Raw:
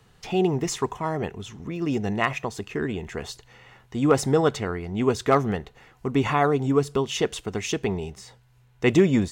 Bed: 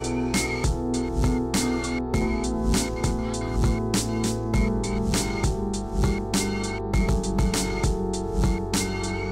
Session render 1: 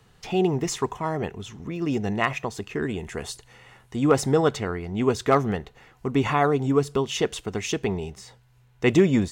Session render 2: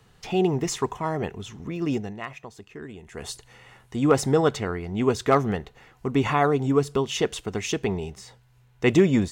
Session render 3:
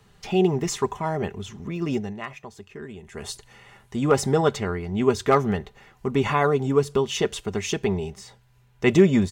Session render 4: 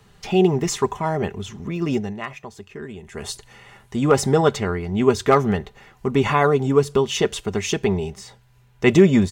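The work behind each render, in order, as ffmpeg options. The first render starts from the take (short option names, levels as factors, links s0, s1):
-filter_complex "[0:a]asettb=1/sr,asplit=3[s0][s1][s2];[s0]atrim=end=2.824[s3];[s1]atrim=start=2.82:end=3.96,asetpts=PTS-STARTPTS,afade=t=in:d=0.004:c=qsin,afade=t=out:st=1.136:d=0.004:c=qsin,equalizer=f=9500:w=1.7:g=10[s4];[s2]atrim=start=3.956[s5];[s3][s4]acrossfade=d=0.004:c1=hsin:c2=qsin[s6];[s6][s5]acrossfade=d=0.004:c1=qsin:c2=hsin"
-filter_complex "[0:a]asplit=3[s0][s1][s2];[s0]atrim=end=2.19,asetpts=PTS-STARTPTS,afade=t=out:st=1.94:d=0.25:c=qua:silence=0.266073[s3];[s1]atrim=start=2.19:end=3.02,asetpts=PTS-STARTPTS,volume=0.266[s4];[s2]atrim=start=3.02,asetpts=PTS-STARTPTS,afade=t=in:d=0.25:c=qua:silence=0.266073[s5];[s3][s4][s5]concat=n=3:v=0:a=1"
-af "equalizer=f=94:t=o:w=0.33:g=8.5,aecho=1:1:5:0.42"
-af "volume=1.5,alimiter=limit=0.708:level=0:latency=1"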